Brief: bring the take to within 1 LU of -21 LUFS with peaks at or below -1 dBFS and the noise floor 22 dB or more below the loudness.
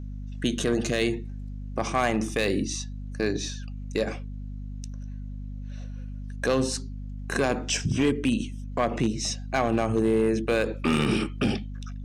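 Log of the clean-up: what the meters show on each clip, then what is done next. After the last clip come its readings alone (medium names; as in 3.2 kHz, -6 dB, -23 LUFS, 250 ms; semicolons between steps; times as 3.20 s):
clipped samples 0.6%; clipping level -16.0 dBFS; hum 50 Hz; highest harmonic 250 Hz; hum level -33 dBFS; loudness -27.0 LUFS; peak level -16.0 dBFS; loudness target -21.0 LUFS
-> clip repair -16 dBFS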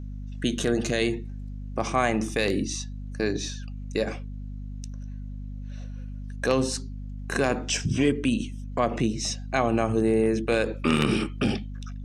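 clipped samples 0.0%; hum 50 Hz; highest harmonic 200 Hz; hum level -33 dBFS
-> de-hum 50 Hz, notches 4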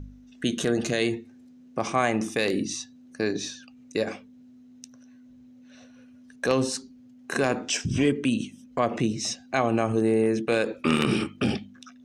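hum not found; loudness -26.5 LUFS; peak level -7.0 dBFS; loudness target -21.0 LUFS
-> trim +5.5 dB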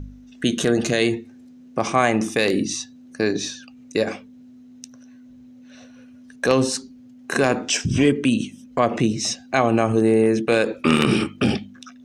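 loudness -21.0 LUFS; peak level -1.5 dBFS; noise floor -46 dBFS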